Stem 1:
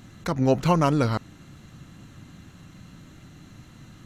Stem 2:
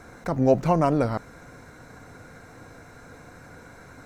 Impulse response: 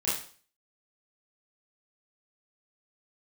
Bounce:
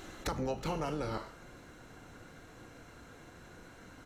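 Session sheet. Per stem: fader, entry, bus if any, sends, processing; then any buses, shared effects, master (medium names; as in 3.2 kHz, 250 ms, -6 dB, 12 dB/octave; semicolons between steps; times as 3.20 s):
+3.0 dB, 0.00 s, send -21 dB, spectral gate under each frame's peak -10 dB weak; bass shelf 330 Hz +10 dB; auto duck -16 dB, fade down 1.20 s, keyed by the second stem
-8.5 dB, 2.5 ms, no send, none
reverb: on, RT60 0.45 s, pre-delay 26 ms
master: compression 6:1, threshold -32 dBFS, peak gain reduction 11 dB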